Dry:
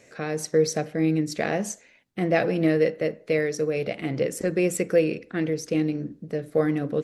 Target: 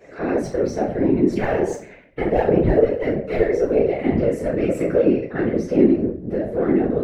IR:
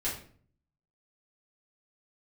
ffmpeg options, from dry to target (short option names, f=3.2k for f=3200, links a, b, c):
-filter_complex "[0:a]asplit=2[a][b];[b]highpass=f=720:p=1,volume=17dB,asoftclip=type=tanh:threshold=-7.5dB[c];[a][c]amix=inputs=2:normalize=0,lowpass=f=1.1k:p=1,volume=-6dB,asettb=1/sr,asplit=3[d][e][f];[d]atrim=end=1.294[g];[e]atrim=start=1.29:end=3.78,asetpts=PTS-STARTPTS,afade=t=in:d=0.004:c=qsin,afade=t=out:st=2.486:d=0.004:c=qsin,aphaser=in_gain=1:out_gain=1:delay=2.4:decay=0.73:speed=1.6:type=sinusoidal[h];[f]atrim=start=3.776[i];[g][h]acrossfade=d=0.004:c1=hsin:c2=qsin[j];[j][i]acrossfade=d=0.004:c1=qsin:c2=hsin,acompressor=threshold=-25dB:ratio=2.5,highshelf=f=9.3k:g=5.5[k];[1:a]atrim=start_sample=2205,afade=t=out:st=0.41:d=0.01,atrim=end_sample=18522[l];[k][l]afir=irnorm=-1:irlink=0,afftfilt=real='hypot(re,im)*cos(2*PI*random(0))':imag='hypot(re,im)*sin(2*PI*random(1))':win_size=512:overlap=0.75,tiltshelf=f=1.5k:g=5.5,volume=2.5dB"